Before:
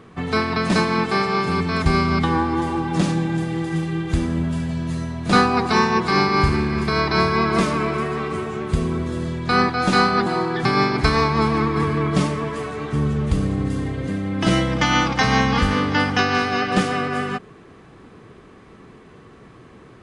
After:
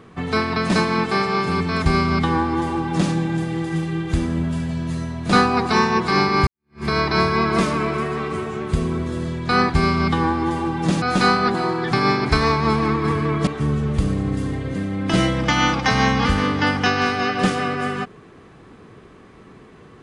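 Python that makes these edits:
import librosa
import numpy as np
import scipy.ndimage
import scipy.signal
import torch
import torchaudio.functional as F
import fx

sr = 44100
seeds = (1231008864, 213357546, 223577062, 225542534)

y = fx.edit(x, sr, fx.duplicate(start_s=1.85, length_s=1.28, to_s=9.74),
    fx.fade_in_span(start_s=6.47, length_s=0.38, curve='exp'),
    fx.cut(start_s=12.19, length_s=0.61), tone=tone)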